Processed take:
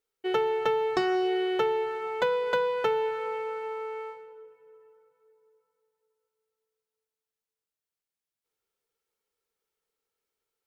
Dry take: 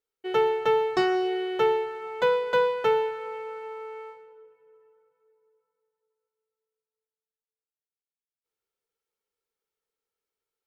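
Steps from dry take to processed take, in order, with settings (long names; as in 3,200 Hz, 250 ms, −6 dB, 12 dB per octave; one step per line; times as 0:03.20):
downward compressor 6 to 1, threshold −26 dBFS, peak gain reduction 8 dB
level +3 dB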